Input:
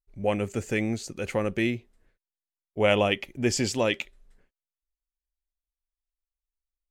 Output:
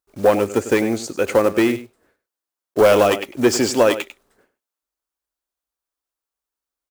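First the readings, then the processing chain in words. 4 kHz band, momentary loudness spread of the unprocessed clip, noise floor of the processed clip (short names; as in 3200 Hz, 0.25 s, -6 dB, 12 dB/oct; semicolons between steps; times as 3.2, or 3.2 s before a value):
+4.5 dB, 9 LU, under -85 dBFS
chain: block floating point 5-bit; HPF 73 Hz 12 dB/oct; high shelf 2200 Hz +8 dB; transient shaper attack +5 dB, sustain +1 dB; echo 98 ms -14.5 dB; hard clip -17.5 dBFS, distortion -9 dB; band shelf 620 Hz +10.5 dB 2.9 oct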